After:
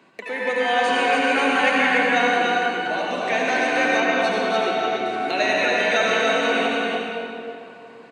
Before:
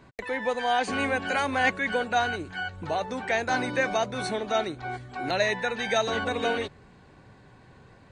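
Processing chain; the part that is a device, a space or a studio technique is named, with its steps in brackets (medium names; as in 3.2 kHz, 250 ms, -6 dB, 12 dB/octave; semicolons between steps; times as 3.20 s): stadium PA (high-pass 200 Hz 24 dB/octave; peaking EQ 2.7 kHz +7 dB 0.5 oct; loudspeakers at several distances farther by 67 m -11 dB, 98 m -4 dB; reverberation RT60 2.8 s, pre-delay 69 ms, DRR -3.5 dB); 4.00–5.06 s: low-pass 5.6 kHz 12 dB/octave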